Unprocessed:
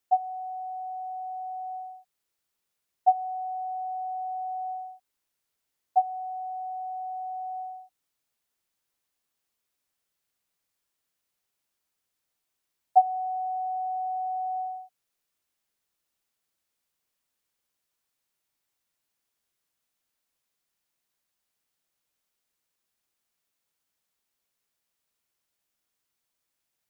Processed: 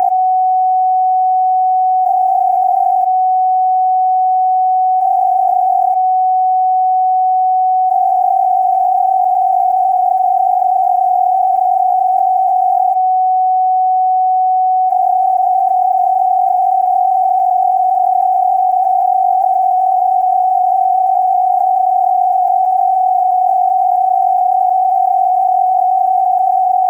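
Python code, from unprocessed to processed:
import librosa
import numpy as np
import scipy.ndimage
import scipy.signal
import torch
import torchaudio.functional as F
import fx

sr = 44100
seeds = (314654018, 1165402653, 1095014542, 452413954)

y = fx.bin_compress(x, sr, power=0.2)
y = fx.fixed_phaser(y, sr, hz=770.0, stages=8)
y = fx.env_flatten(y, sr, amount_pct=100)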